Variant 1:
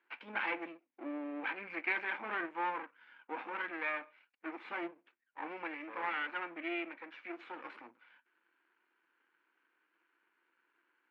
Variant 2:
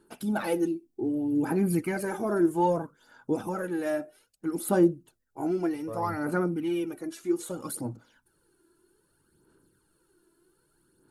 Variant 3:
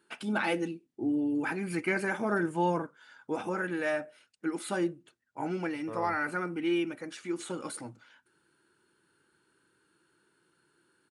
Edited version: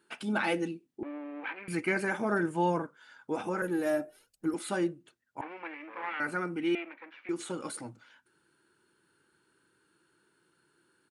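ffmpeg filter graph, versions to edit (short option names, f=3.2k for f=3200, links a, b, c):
-filter_complex "[0:a]asplit=3[a][b][c];[2:a]asplit=5[d][e][f][g][h];[d]atrim=end=1.032[i];[a]atrim=start=1.028:end=1.682[j];[e]atrim=start=1.678:end=3.622[k];[1:a]atrim=start=3.618:end=4.542[l];[f]atrim=start=4.538:end=5.412[m];[b]atrim=start=5.408:end=6.202[n];[g]atrim=start=6.198:end=6.752[o];[c]atrim=start=6.748:end=7.292[p];[h]atrim=start=7.288[q];[i][j]acrossfade=d=0.004:c1=hsin:c2=hsin[r];[r][k]acrossfade=d=0.004:c1=hsin:c2=hsin[s];[s][l]acrossfade=d=0.004:c1=hsin:c2=hsin[t];[t][m]acrossfade=d=0.004:c1=hsin:c2=hsin[u];[u][n]acrossfade=d=0.004:c1=hsin:c2=hsin[v];[v][o]acrossfade=d=0.004:c1=hsin:c2=hsin[w];[w][p]acrossfade=d=0.004:c1=hsin:c2=hsin[x];[x][q]acrossfade=d=0.004:c1=hsin:c2=hsin"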